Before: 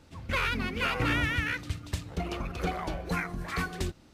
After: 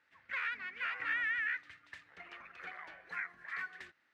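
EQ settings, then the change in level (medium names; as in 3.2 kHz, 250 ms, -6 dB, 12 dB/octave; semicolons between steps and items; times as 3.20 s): band-pass filter 1.8 kHz, Q 4.6; 0.0 dB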